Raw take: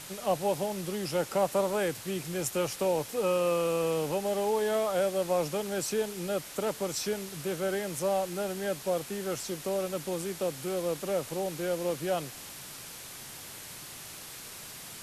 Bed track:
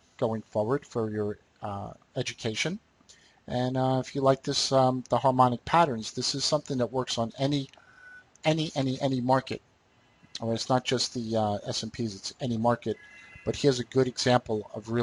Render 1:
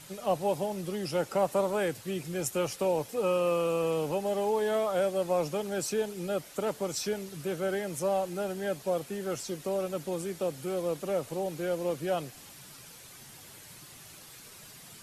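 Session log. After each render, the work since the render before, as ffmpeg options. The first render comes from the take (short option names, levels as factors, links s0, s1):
-af "afftdn=nr=8:nf=-45"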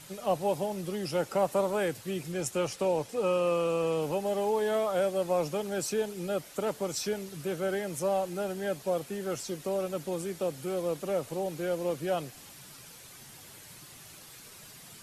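-filter_complex "[0:a]asettb=1/sr,asplit=3[s0][s1][s2];[s0]atrim=end=2.324[s3];[s1]atrim=start=2.32:end=4.02,asetpts=PTS-STARTPTS,afade=t=in:d=0.004:c=qsin,afade=t=out:st=1.696:d=0.004:c=qsin,lowpass=10000[s4];[s2]atrim=start=4.016[s5];[s3][s4]acrossfade=d=0.004:c1=hsin:c2=qsin[s6];[s6][s5]acrossfade=d=0.004:c1=qsin:c2=hsin"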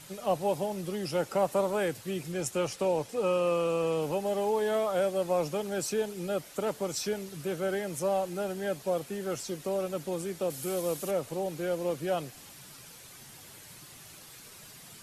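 -filter_complex "[0:a]asettb=1/sr,asplit=3[s0][s1][s2];[s0]atrim=end=10.504[s3];[s1]atrim=start=10.5:end=11.11,asetpts=PTS-STARTPTS,afade=t=in:d=0.004:c=qsin,afade=t=out:st=0.606:d=0.004:c=qsin,highshelf=f=5500:g=12[s4];[s2]atrim=start=11.106[s5];[s3][s4]acrossfade=d=0.004:c1=hsin:c2=qsin[s6];[s6][s5]acrossfade=d=0.004:c1=qsin:c2=hsin"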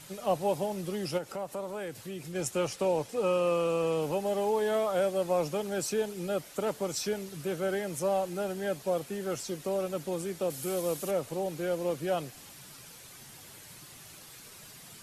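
-filter_complex "[0:a]asplit=3[s0][s1][s2];[s0]afade=t=out:st=1.17:d=0.02[s3];[s1]acompressor=threshold=0.01:ratio=2:attack=3.2:release=140:knee=1:detection=peak,afade=t=in:st=1.17:d=0.02,afade=t=out:st=2.34:d=0.02[s4];[s2]afade=t=in:st=2.34:d=0.02[s5];[s3][s4][s5]amix=inputs=3:normalize=0"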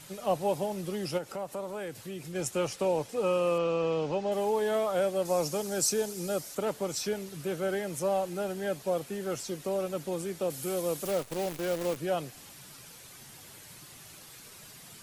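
-filter_complex "[0:a]asettb=1/sr,asplit=3[s0][s1][s2];[s0]atrim=end=3.584[s3];[s1]atrim=start=3.58:end=4.32,asetpts=PTS-STARTPTS,afade=t=in:d=0.004:c=qsin,afade=t=out:st=0.736:d=0.004:c=qsin,lowpass=f=6000:w=0.5412,lowpass=f=6000:w=1.3066[s4];[s2]atrim=start=4.316[s5];[s3][s4]acrossfade=d=0.004:c1=hsin:c2=qsin[s6];[s6][s5]acrossfade=d=0.004:c1=qsin:c2=hsin,asettb=1/sr,asplit=3[s7][s8][s9];[s7]atrim=end=5.254[s10];[s8]atrim=start=5.25:end=6.55,asetpts=PTS-STARTPTS,afade=t=in:d=0.004:c=qsin,afade=t=out:st=1.296:d=0.004:c=qsin,highshelf=f=4100:t=q:w=1.5:g=7[s11];[s9]atrim=start=6.546[s12];[s10][s11]acrossfade=d=0.004:c1=hsin:c2=qsin[s13];[s13][s12]acrossfade=d=0.004:c1=qsin:c2=hsin,asettb=1/sr,asplit=3[s14][s15][s16];[s14]atrim=end=11.054[s17];[s15]atrim=start=11.05:end=11.97,asetpts=PTS-STARTPTS,afade=t=in:d=0.004:c=qsin,afade=t=out:st=0.916:d=0.004:c=qsin,acrusher=bits=7:dc=4:mix=0:aa=0.000001[s18];[s16]atrim=start=11.966[s19];[s17][s18]acrossfade=d=0.004:c1=hsin:c2=qsin[s20];[s20][s19]acrossfade=d=0.004:c1=qsin:c2=hsin"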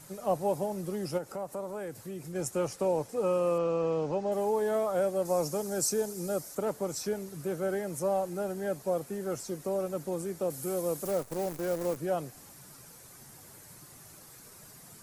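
-af "equalizer=f=3100:w=1.1:g=-11"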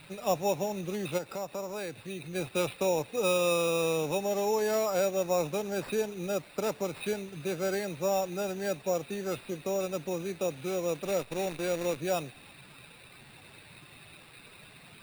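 -af "lowpass=f=2600:t=q:w=9.6,acrusher=samples=7:mix=1:aa=0.000001"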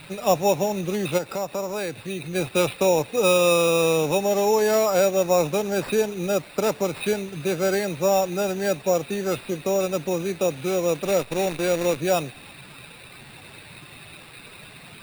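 -af "volume=2.66"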